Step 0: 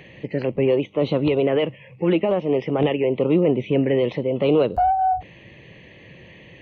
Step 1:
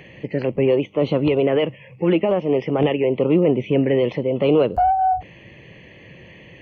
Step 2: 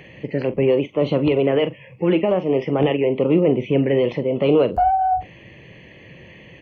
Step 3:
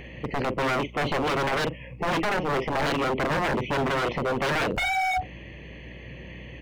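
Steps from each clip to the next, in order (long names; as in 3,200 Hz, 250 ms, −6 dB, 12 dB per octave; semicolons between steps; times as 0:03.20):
notch filter 3,800 Hz, Q 5.9; level +1.5 dB
double-tracking delay 43 ms −12.5 dB
mains hum 60 Hz, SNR 25 dB; wave folding −20 dBFS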